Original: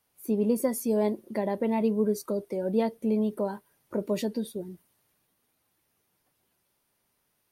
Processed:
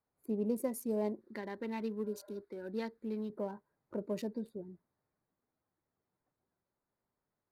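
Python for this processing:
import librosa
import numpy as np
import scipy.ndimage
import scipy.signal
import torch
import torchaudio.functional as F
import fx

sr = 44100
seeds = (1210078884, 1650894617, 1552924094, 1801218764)

y = fx.wiener(x, sr, points=15)
y = fx.notch(y, sr, hz=3400.0, q=16.0)
y = fx.spec_repair(y, sr, seeds[0], start_s=2.06, length_s=0.29, low_hz=470.0, high_hz=2200.0, source='after')
y = fx.graphic_eq_15(y, sr, hz=(160, 630, 1600, 4000), db=(-10, -11, 9, 8), at=(1.21, 3.3))
y = y * 10.0 ** (-8.5 / 20.0)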